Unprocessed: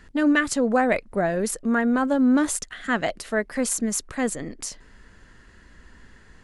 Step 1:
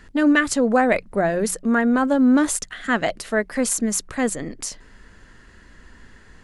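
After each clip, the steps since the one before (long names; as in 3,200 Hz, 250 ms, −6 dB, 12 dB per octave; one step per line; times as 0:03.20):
mains-hum notches 60/120/180 Hz
level +3 dB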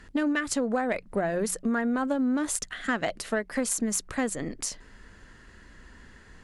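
downward compressor 6 to 1, threshold −22 dBFS, peak gain reduction 9 dB
harmonic generator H 3 −18 dB, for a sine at −10 dBFS
level +1.5 dB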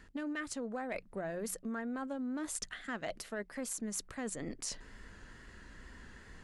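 reversed playback
downward compressor 4 to 1, threshold −36 dBFS, peak gain reduction 12 dB
reversed playback
tape wow and flutter 44 cents
level −2 dB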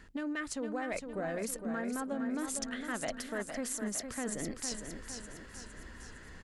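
repeating echo 459 ms, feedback 52%, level −7 dB
level +2 dB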